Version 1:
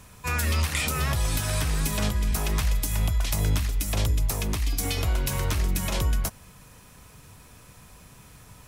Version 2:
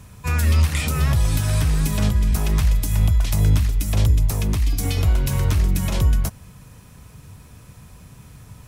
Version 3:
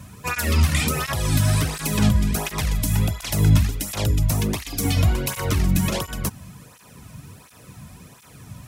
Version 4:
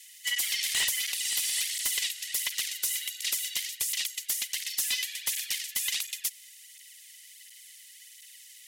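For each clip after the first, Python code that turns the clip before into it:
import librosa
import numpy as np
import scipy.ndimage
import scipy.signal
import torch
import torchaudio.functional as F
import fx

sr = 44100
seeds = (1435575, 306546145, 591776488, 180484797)

y1 = fx.peak_eq(x, sr, hz=100.0, db=9.5, octaves=2.8)
y2 = fx.flanger_cancel(y1, sr, hz=1.4, depth_ms=2.6)
y2 = y2 * librosa.db_to_amplitude(6.0)
y3 = scipy.signal.sosfilt(scipy.signal.cheby1(6, 1.0, 2400.0, 'highpass', fs=sr, output='sos'), y2)
y3 = y3 * np.sin(2.0 * np.pi * 500.0 * np.arange(len(y3)) / sr)
y3 = fx.fold_sine(y3, sr, drive_db=9, ceiling_db=-12.5)
y3 = y3 * librosa.db_to_amplitude(-7.5)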